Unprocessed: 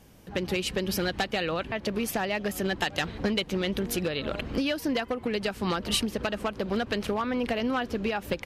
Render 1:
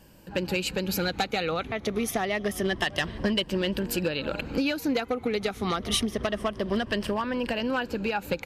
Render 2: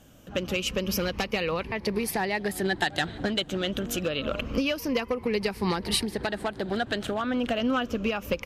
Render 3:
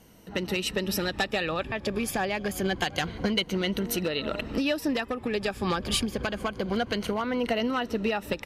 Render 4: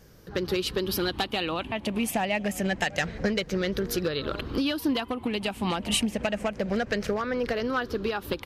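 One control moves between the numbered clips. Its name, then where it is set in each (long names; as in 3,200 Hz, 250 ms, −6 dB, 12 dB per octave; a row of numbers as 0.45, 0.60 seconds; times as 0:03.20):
rippled gain that drifts along the octave scale, ripples per octave: 1.3, 0.85, 1.9, 0.57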